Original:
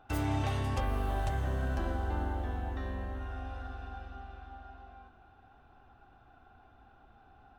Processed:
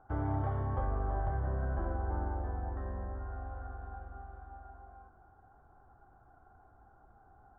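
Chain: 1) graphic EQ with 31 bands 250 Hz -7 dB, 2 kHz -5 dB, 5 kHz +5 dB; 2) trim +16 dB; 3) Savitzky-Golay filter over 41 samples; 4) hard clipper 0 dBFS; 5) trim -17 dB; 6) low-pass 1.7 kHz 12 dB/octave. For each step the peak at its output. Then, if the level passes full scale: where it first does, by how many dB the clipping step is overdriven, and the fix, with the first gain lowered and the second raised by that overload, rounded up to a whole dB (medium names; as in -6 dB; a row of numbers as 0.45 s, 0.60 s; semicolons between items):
-20.0 dBFS, -4.0 dBFS, -4.0 dBFS, -4.0 dBFS, -21.0 dBFS, -21.0 dBFS; nothing clips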